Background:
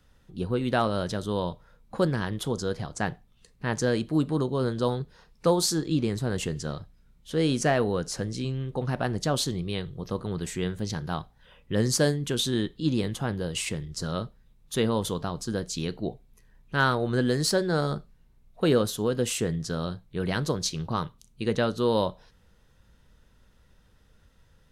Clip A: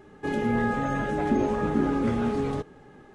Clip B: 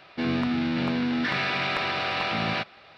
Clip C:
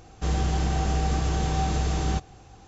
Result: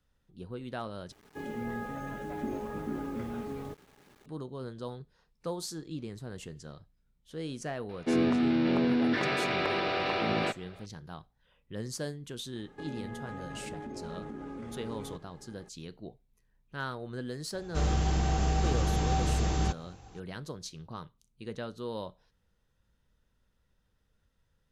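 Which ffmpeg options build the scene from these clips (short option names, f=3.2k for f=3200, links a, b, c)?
-filter_complex "[1:a]asplit=2[a][b];[0:a]volume=-13.5dB[c];[a]acrusher=bits=7:mix=0:aa=0.000001[d];[2:a]equalizer=f=400:t=o:w=1.3:g=12[e];[b]acompressor=threshold=-32dB:ratio=6:attack=3.2:release=140:knee=1:detection=peak[f];[c]asplit=2[g][h];[g]atrim=end=1.124[i];[d]atrim=end=3.14,asetpts=PTS-STARTPTS,volume=-11.5dB[j];[h]atrim=start=4.256[k];[e]atrim=end=2.97,asetpts=PTS-STARTPTS,volume=-6dB,afade=t=in:d=0.004:c=hsin,afade=t=out:st=2.966:d=0.004:c=hsin,adelay=7890[l];[f]atrim=end=3.14,asetpts=PTS-STARTPTS,volume=-6.5dB,afade=t=in:d=0.004:c=hsin,afade=t=out:st=3.136:d=0.004:c=hsin,adelay=12550[m];[3:a]atrim=end=2.67,asetpts=PTS-STARTPTS,volume=-3dB,afade=t=in:d=0.004:c=hsin,afade=t=out:st=2.666:d=0.004:c=hsin,adelay=17530[n];[i][j]acrossfade=d=0.004:c1=hsin:c2=hsin[o];[o][k]acrossfade=d=0.004:c1=hsin:c2=hsin[p];[p][l][m][n]amix=inputs=4:normalize=0"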